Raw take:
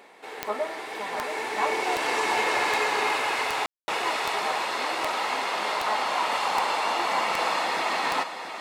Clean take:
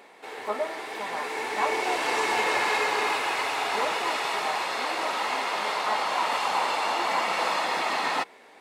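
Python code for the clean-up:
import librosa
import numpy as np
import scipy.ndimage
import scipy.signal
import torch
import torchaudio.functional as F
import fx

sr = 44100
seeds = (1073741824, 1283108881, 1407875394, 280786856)

y = fx.fix_declick_ar(x, sr, threshold=10.0)
y = fx.fix_ambience(y, sr, seeds[0], print_start_s=0.0, print_end_s=0.5, start_s=3.66, end_s=3.88)
y = fx.fix_echo_inverse(y, sr, delay_ms=679, level_db=-9.0)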